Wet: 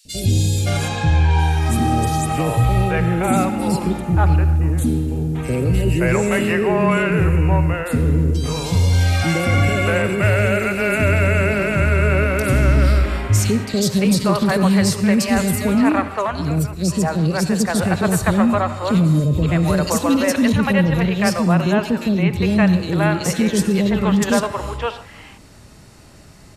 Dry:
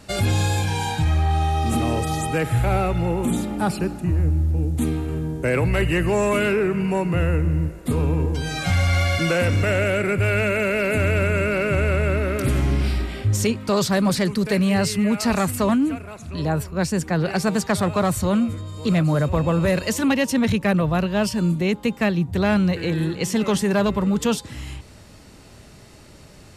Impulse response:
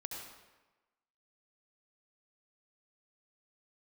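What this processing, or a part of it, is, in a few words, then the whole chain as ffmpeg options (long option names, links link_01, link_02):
keyed gated reverb: -filter_complex "[0:a]asettb=1/sr,asplit=3[link_01][link_02][link_03];[link_01]atrim=end=0.884[link_04];[link_02]atrim=start=0.88:end=1.39,asetpts=PTS-STARTPTS,afade=type=in:duration=0.004:curve=qsin,afade=type=out:start_time=0.506:duration=0.004:curve=qsin,lowpass=frequency=7600:width=0.5412,lowpass=frequency=7600:width=1.3066[link_05];[link_03]atrim=start=1.386[link_06];[link_04][link_05]acrossfade=duration=0.004:curve1=hsin:curve2=qsin[link_07];[link_07][link_06]acrossfade=duration=0.004:curve1=qsin:curve2=hsin,asplit=3[link_08][link_09][link_10];[1:a]atrim=start_sample=2205[link_11];[link_09][link_11]afir=irnorm=-1:irlink=0[link_12];[link_10]apad=whole_len=1171731[link_13];[link_12][link_13]sidechaingate=range=-33dB:threshold=-31dB:ratio=16:detection=peak,volume=-5.5dB[link_14];[link_08][link_14]amix=inputs=2:normalize=0,acrossover=split=460|3100[link_15][link_16][link_17];[link_15]adelay=50[link_18];[link_16]adelay=570[link_19];[link_18][link_19][link_17]amix=inputs=3:normalize=0,volume=2dB"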